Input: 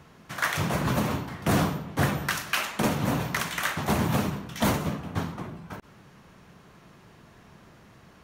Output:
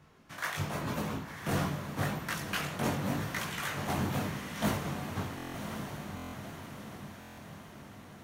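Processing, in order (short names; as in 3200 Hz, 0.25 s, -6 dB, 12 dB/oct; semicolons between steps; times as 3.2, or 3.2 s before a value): chorus voices 2, 0.86 Hz, delay 20 ms, depth 1.8 ms; diffused feedback echo 1.052 s, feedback 57%, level -7 dB; stuck buffer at 5.36/6.15/7.19, samples 1024, times 7; gain -5 dB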